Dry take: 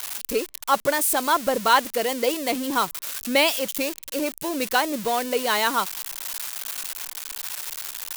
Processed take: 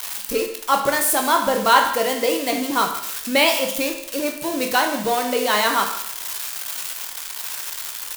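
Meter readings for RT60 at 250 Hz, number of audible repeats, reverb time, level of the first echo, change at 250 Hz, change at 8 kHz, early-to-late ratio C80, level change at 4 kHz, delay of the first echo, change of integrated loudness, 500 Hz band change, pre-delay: 0.75 s, 1, 0.70 s, -16.0 dB, +3.0 dB, +3.0 dB, 9.5 dB, +3.5 dB, 156 ms, +3.5 dB, +3.0 dB, 15 ms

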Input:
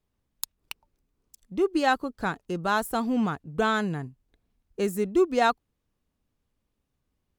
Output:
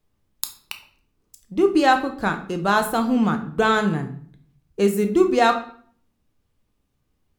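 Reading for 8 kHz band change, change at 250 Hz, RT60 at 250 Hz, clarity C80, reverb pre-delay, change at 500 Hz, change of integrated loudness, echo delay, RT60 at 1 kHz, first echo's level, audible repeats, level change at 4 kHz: +5.5 dB, +6.5 dB, 0.75 s, 15.0 dB, 7 ms, +6.0 dB, +6.0 dB, no echo, 0.50 s, no echo, no echo, +6.0 dB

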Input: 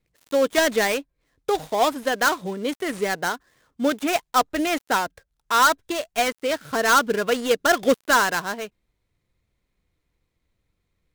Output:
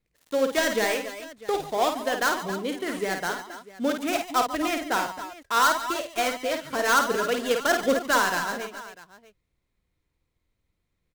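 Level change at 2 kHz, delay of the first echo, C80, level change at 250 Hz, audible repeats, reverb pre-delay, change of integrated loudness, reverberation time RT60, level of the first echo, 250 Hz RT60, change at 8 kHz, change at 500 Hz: -3.0 dB, 52 ms, no reverb, -3.0 dB, 4, no reverb, -3.5 dB, no reverb, -6.0 dB, no reverb, -3.0 dB, -3.5 dB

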